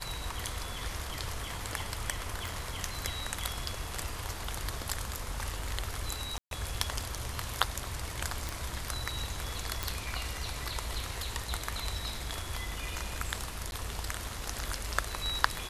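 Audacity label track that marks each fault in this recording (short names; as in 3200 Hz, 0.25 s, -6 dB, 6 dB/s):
2.470000	2.470000	pop
6.380000	6.510000	gap 0.132 s
8.490000	8.490000	pop
9.830000	9.830000	pop
13.710000	13.720000	gap 11 ms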